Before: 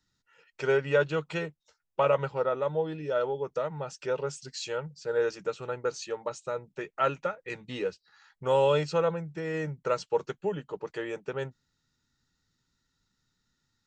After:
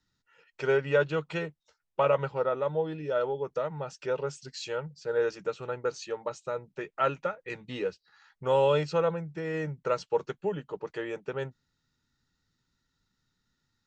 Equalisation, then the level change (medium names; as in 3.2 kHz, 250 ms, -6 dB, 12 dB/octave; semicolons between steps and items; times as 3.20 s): distance through air 52 m; 0.0 dB